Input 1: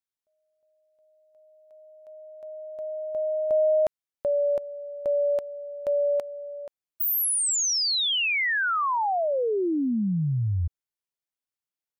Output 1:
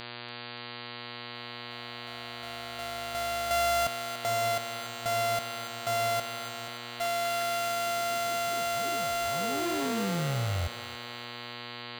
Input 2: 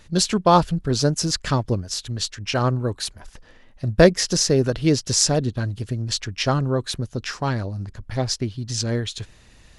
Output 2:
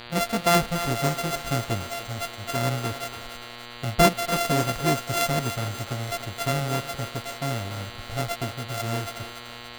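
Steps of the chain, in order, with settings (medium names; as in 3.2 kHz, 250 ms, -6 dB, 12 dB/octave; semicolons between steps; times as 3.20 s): sorted samples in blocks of 64 samples; mains buzz 120 Hz, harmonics 39, -37 dBFS -1 dB/octave; thinning echo 288 ms, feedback 57%, high-pass 470 Hz, level -9 dB; trim -5 dB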